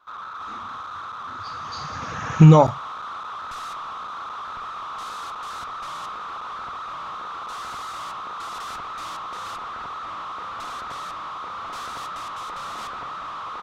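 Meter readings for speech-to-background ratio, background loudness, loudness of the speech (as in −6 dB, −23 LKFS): 19.0 dB, −33.0 LKFS, −14.0 LKFS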